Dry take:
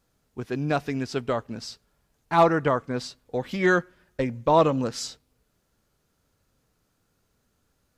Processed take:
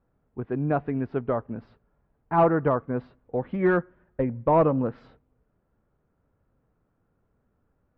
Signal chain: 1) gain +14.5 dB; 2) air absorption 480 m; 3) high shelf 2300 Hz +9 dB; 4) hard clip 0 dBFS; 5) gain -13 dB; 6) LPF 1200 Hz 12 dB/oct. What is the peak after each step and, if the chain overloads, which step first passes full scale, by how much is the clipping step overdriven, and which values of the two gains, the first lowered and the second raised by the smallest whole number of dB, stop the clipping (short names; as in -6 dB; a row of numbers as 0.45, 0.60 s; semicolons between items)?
+6.5, +4.5, +5.5, 0.0, -13.0, -12.5 dBFS; step 1, 5.5 dB; step 1 +8.5 dB, step 5 -7 dB